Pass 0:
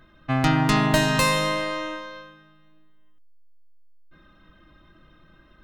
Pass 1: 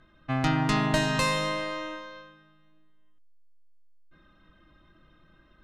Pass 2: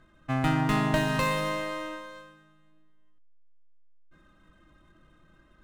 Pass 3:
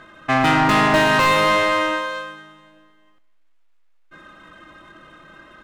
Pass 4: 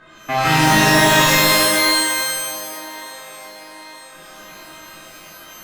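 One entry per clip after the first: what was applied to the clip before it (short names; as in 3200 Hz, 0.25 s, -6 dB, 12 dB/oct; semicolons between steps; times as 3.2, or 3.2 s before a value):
LPF 9200 Hz 12 dB/oct; gain -5 dB
median filter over 9 samples
overdrive pedal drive 23 dB, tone 3300 Hz, clips at -11.5 dBFS; feedback echo 0.211 s, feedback 48%, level -22 dB; gain +4 dB
band-limited delay 0.913 s, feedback 54%, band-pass 650 Hz, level -15 dB; shimmer reverb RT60 1.1 s, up +12 st, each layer -2 dB, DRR -7 dB; gain -6.5 dB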